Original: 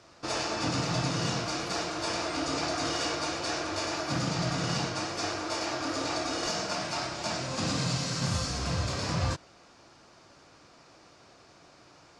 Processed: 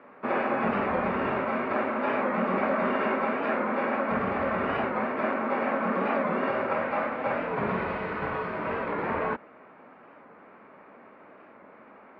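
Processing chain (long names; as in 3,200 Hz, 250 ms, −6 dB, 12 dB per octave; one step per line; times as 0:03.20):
single-sideband voice off tune −86 Hz 290–2,300 Hz
wow of a warped record 45 rpm, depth 100 cents
level +7 dB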